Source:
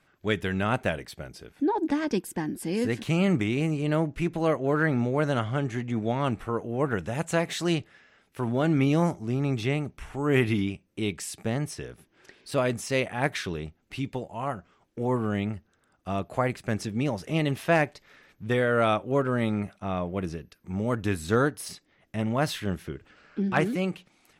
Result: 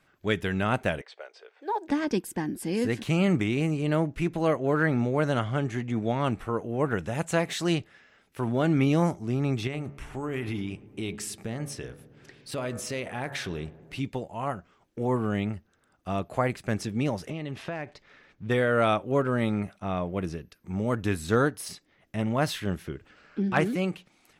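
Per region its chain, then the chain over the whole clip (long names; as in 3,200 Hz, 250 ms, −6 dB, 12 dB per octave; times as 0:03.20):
0:01.01–0:01.88: low-pass that shuts in the quiet parts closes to 2,400 Hz, open at −25.5 dBFS + Chebyshev band-pass filter 450–8,800 Hz, order 4 + floating-point word with a short mantissa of 6 bits
0:09.67–0:14.00: hum removal 70.32 Hz, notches 26 + downward compressor 5 to 1, threshold −28 dBFS + feedback echo with a low-pass in the loop 109 ms, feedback 84%, low-pass 1,600 Hz, level −20 dB
0:17.30–0:18.50: Bessel low-pass filter 4,700 Hz + downward compressor 12 to 1, threshold −29 dBFS
whole clip: no processing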